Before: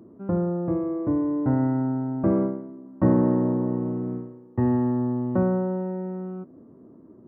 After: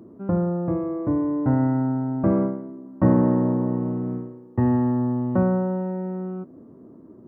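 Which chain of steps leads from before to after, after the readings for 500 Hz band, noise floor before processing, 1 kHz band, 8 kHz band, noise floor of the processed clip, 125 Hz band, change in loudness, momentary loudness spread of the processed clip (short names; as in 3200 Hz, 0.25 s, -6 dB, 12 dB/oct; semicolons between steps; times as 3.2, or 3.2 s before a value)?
+0.5 dB, -50 dBFS, +3.0 dB, n/a, -47 dBFS, +3.0 dB, +1.5 dB, 11 LU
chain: dynamic EQ 370 Hz, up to -4 dB, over -34 dBFS, Q 2.1; gain +3 dB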